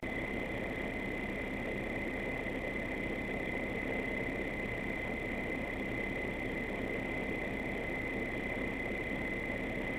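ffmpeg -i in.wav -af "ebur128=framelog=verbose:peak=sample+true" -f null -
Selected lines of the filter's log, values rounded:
Integrated loudness:
  I:         -36.9 LUFS
  Threshold: -46.9 LUFS
Loudness range:
  LRA:         0.6 LU
  Threshold: -56.9 LUFS
  LRA low:   -37.3 LUFS
  LRA high:  -36.7 LUFS
Sample peak:
  Peak:      -22.7 dBFS
True peak:
  Peak:      -22.7 dBFS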